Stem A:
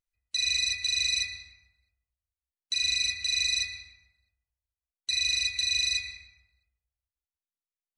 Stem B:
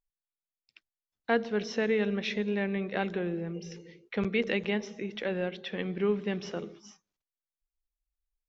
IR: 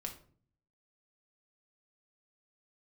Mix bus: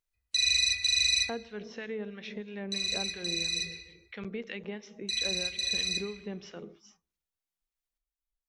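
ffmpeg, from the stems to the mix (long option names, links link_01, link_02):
-filter_complex "[0:a]volume=0dB,asplit=2[link_01][link_02];[link_02]volume=-11.5dB[link_03];[1:a]acrossover=split=1300[link_04][link_05];[link_04]aeval=exprs='val(0)*(1-0.7/2+0.7/2*cos(2*PI*3*n/s))':channel_layout=same[link_06];[link_05]aeval=exprs='val(0)*(1-0.7/2-0.7/2*cos(2*PI*3*n/s))':channel_layout=same[link_07];[link_06][link_07]amix=inputs=2:normalize=0,acompressor=threshold=-33dB:ratio=2,volume=-4dB,asplit=3[link_08][link_09][link_10];[link_09]volume=-19.5dB[link_11];[link_10]apad=whole_len=351858[link_12];[link_01][link_12]sidechaincompress=threshold=-43dB:ratio=8:attack=16:release=1470[link_13];[2:a]atrim=start_sample=2205[link_14];[link_03][link_11]amix=inputs=2:normalize=0[link_15];[link_15][link_14]afir=irnorm=-1:irlink=0[link_16];[link_13][link_08][link_16]amix=inputs=3:normalize=0"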